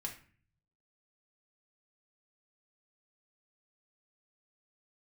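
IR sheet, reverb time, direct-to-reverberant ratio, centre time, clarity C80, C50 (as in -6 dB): 0.45 s, 0.0 dB, 17 ms, 14.0 dB, 9.0 dB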